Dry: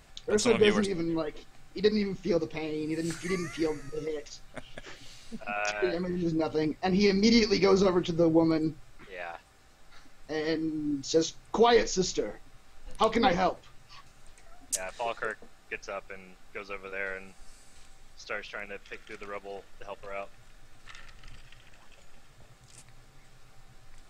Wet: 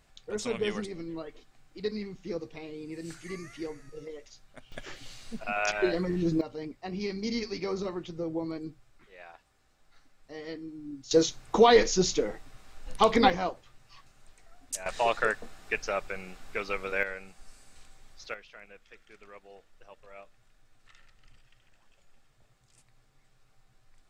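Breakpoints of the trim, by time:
-8 dB
from 4.72 s +2 dB
from 6.41 s -10 dB
from 11.11 s +3 dB
from 13.30 s -4.5 dB
from 14.86 s +6.5 dB
from 17.03 s -1.5 dB
from 18.34 s -11 dB

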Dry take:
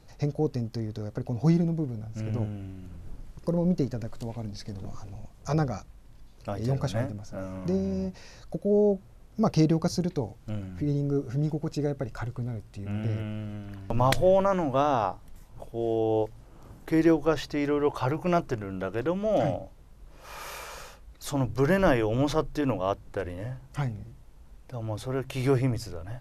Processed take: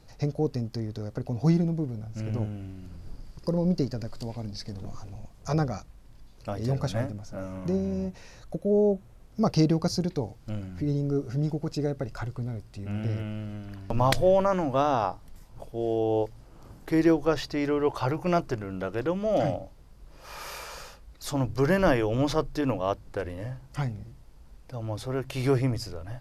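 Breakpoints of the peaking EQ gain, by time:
peaking EQ 4.8 kHz 0.28 oct
2.52 s +3.5 dB
2.94 s +11.5 dB
4.38 s +11.5 dB
4.85 s +3 dB
7.18 s +3 dB
7.86 s -5 dB
8.93 s -5 dB
9.42 s +5.5 dB

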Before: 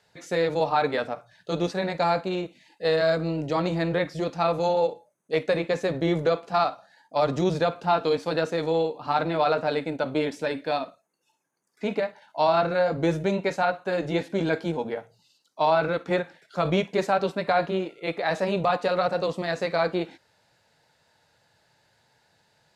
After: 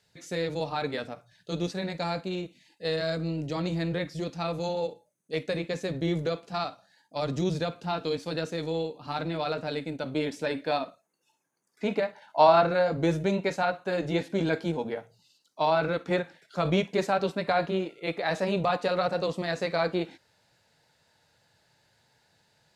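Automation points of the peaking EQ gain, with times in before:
peaking EQ 890 Hz 2.6 oct
9.98 s -10 dB
10.58 s -1.5 dB
12.06 s -1.5 dB
12.40 s +4.5 dB
12.90 s -3.5 dB

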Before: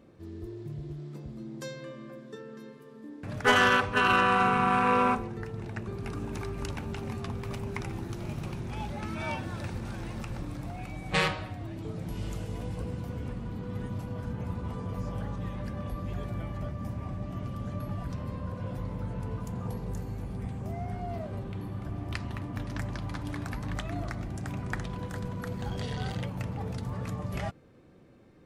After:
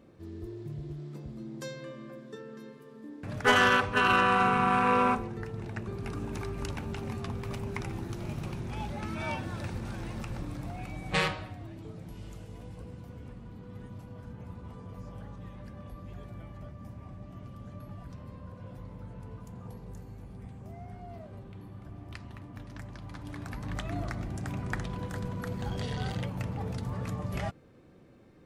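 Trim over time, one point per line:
11.07 s -0.5 dB
12.23 s -9 dB
22.93 s -9 dB
23.92 s 0 dB

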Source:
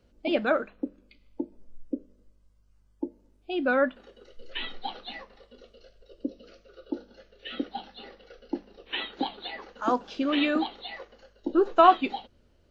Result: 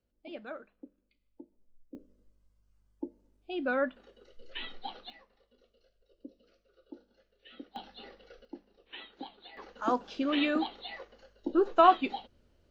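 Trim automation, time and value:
-18 dB
from 1.95 s -6 dB
from 5.10 s -15.5 dB
from 7.76 s -4 dB
from 8.45 s -14 dB
from 9.57 s -3.5 dB

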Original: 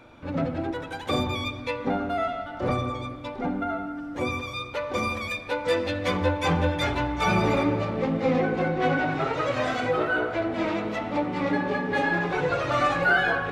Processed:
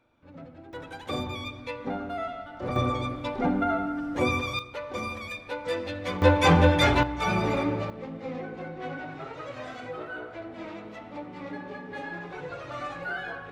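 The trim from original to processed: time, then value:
-18 dB
from 0.73 s -6 dB
from 2.76 s +3 dB
from 4.59 s -6 dB
from 6.22 s +5 dB
from 7.03 s -3.5 dB
from 7.90 s -12.5 dB

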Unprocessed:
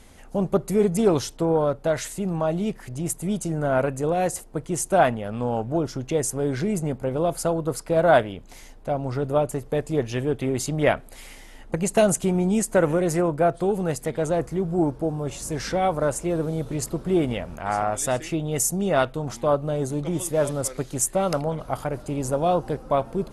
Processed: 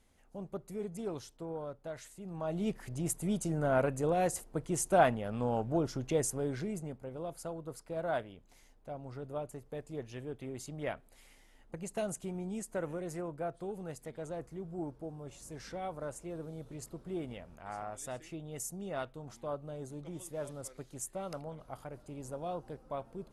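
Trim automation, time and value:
2.21 s -19.5 dB
2.68 s -7 dB
6.20 s -7 dB
7.05 s -17.5 dB

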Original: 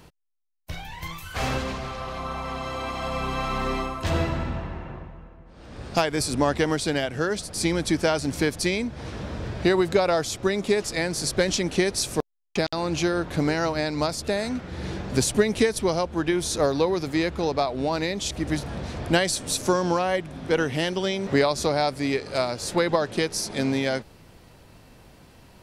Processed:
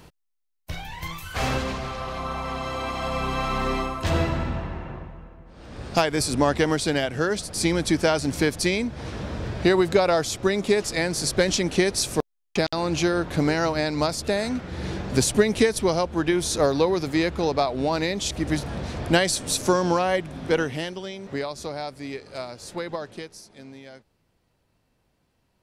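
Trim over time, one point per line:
20.50 s +1.5 dB
21.05 s -9 dB
23.07 s -9 dB
23.50 s -19 dB

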